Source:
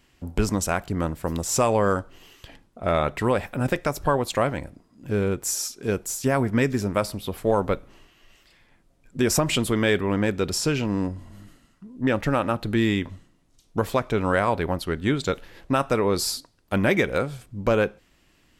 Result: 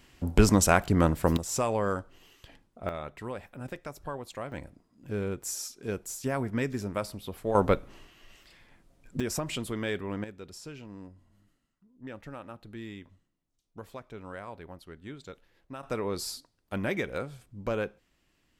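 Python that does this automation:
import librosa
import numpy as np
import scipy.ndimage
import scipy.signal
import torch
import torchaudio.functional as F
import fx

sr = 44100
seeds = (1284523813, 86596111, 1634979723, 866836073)

y = fx.gain(x, sr, db=fx.steps((0.0, 3.0), (1.37, -7.5), (2.89, -15.5), (4.52, -8.5), (7.55, 0.5), (9.2, -11.0), (10.24, -20.0), (15.83, -10.0)))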